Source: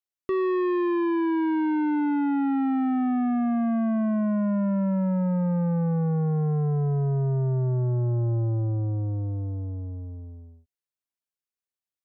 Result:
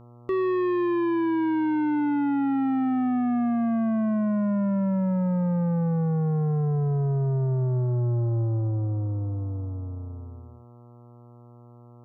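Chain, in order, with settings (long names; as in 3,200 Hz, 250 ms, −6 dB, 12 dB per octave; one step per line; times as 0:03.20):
hum with harmonics 120 Hz, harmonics 11, −49 dBFS −6 dB per octave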